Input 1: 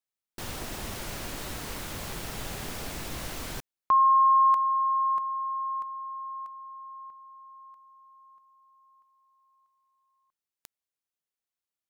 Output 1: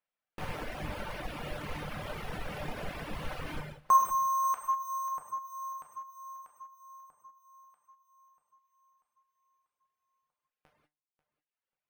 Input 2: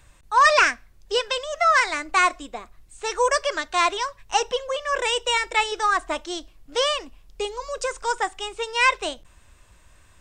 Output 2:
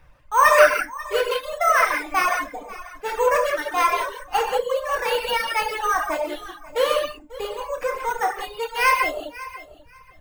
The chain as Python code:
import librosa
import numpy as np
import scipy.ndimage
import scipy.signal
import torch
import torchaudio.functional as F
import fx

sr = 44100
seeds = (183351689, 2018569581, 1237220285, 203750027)

p1 = fx.dereverb_blind(x, sr, rt60_s=0.83)
p2 = fx.low_shelf(p1, sr, hz=440.0, db=11.0)
p3 = fx.comb_fb(p2, sr, f0_hz=150.0, decay_s=0.33, harmonics='all', damping=0.5, mix_pct=70)
p4 = np.repeat(p3[::6], 6)[:len(p3)]
p5 = fx.band_shelf(p4, sr, hz=1200.0, db=8.0, octaves=2.9)
p6 = p5 + fx.echo_feedback(p5, sr, ms=540, feedback_pct=18, wet_db=-16, dry=0)
p7 = fx.rev_gated(p6, sr, seeds[0], gate_ms=220, shape='flat', drr_db=-2.0)
p8 = fx.dereverb_blind(p7, sr, rt60_s=1.0)
y = p8 * librosa.db_to_amplitude(-2.5)